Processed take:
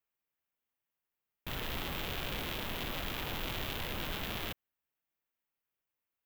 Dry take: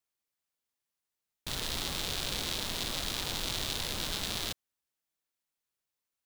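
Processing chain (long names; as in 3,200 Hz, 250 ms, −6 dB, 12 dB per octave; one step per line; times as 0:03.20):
flat-topped bell 6,300 Hz −13.5 dB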